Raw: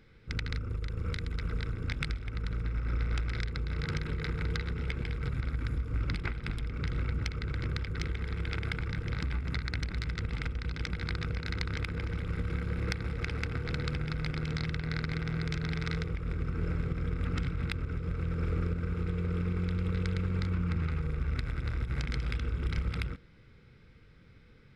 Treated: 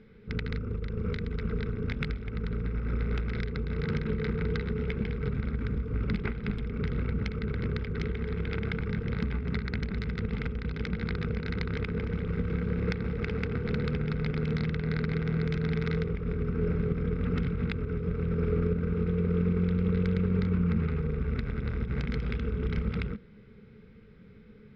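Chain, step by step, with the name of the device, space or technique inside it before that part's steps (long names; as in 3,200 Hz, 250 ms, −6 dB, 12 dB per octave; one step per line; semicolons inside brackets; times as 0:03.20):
inside a cardboard box (low-pass filter 3,600 Hz 12 dB per octave; hollow resonant body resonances 210/420 Hz, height 15 dB, ringing for 75 ms)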